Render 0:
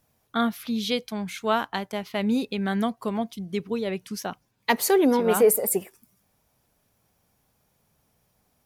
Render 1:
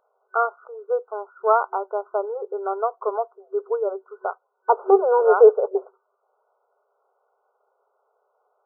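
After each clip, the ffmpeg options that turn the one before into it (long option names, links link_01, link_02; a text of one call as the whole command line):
ffmpeg -i in.wav -af "afftfilt=real='re*between(b*sr/4096,380,1500)':imag='im*between(b*sr/4096,380,1500)':win_size=4096:overlap=0.75,volume=6.5dB" out.wav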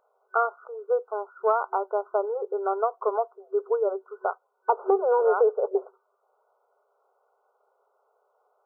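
ffmpeg -i in.wav -af "acompressor=threshold=-18dB:ratio=6" out.wav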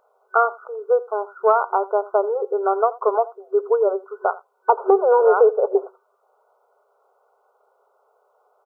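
ffmpeg -i in.wav -af "aecho=1:1:84:0.1,volume=6.5dB" out.wav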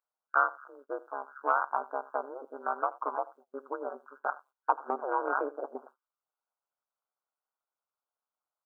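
ffmpeg -i in.wav -af "highpass=1200,agate=range=-22dB:threshold=-50dB:ratio=16:detection=peak,tremolo=f=140:d=0.974" out.wav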